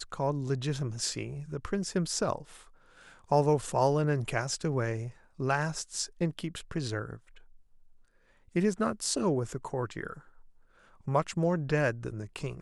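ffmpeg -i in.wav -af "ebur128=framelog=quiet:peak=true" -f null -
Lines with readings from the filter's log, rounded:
Integrated loudness:
  I:         -31.3 LUFS
  Threshold: -42.1 LUFS
Loudness range:
  LRA:         5.1 LU
  Threshold: -52.3 LUFS
  LRA low:   -35.2 LUFS
  LRA high:  -30.1 LUFS
True peak:
  Peak:      -13.1 dBFS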